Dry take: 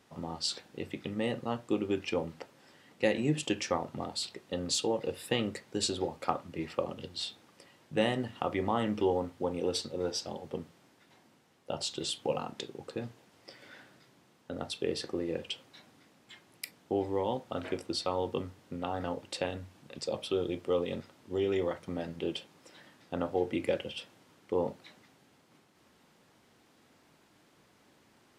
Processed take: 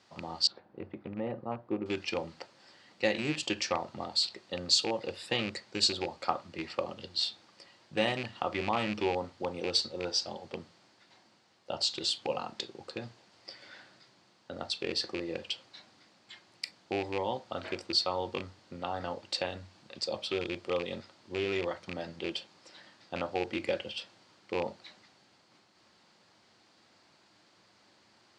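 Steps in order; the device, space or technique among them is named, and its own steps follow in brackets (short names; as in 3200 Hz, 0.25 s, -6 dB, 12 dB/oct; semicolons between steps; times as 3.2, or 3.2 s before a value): car door speaker with a rattle (rattling part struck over -34 dBFS, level -27 dBFS; speaker cabinet 100–7800 Hz, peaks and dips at 150 Hz -8 dB, 260 Hz -8 dB, 440 Hz -6 dB, 4500 Hz +9 dB); 0.47–1.86 LPF 1000 Hz 12 dB/oct; gain +1 dB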